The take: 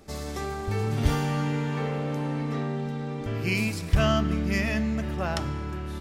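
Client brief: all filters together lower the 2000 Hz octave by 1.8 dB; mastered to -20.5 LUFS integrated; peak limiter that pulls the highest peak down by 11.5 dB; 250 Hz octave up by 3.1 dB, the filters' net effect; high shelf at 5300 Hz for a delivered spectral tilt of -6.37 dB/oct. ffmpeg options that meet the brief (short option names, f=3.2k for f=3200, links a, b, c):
-af "equalizer=f=250:t=o:g=4,equalizer=f=2k:t=o:g=-3.5,highshelf=f=5.3k:g=7,volume=8.5dB,alimiter=limit=-11dB:level=0:latency=1"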